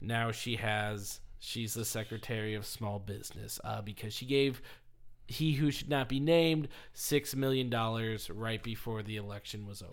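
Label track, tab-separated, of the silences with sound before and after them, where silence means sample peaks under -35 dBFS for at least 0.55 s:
4.550000	5.300000	silence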